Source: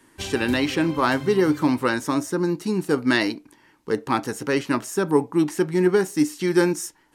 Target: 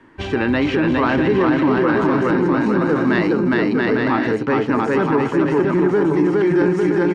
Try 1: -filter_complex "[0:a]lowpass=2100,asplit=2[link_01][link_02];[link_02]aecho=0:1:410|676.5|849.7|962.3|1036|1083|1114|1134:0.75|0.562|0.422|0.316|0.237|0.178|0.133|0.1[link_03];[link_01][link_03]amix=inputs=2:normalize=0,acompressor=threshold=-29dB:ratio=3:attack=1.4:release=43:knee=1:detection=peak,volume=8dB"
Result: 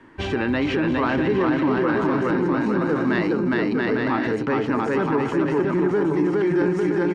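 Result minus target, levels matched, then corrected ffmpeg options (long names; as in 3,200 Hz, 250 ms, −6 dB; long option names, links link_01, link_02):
downward compressor: peak gain reduction +4.5 dB
-filter_complex "[0:a]lowpass=2100,asplit=2[link_01][link_02];[link_02]aecho=0:1:410|676.5|849.7|962.3|1036|1083|1114|1134:0.75|0.562|0.422|0.316|0.237|0.178|0.133|0.1[link_03];[link_01][link_03]amix=inputs=2:normalize=0,acompressor=threshold=-22.5dB:ratio=3:attack=1.4:release=43:knee=1:detection=peak,volume=8dB"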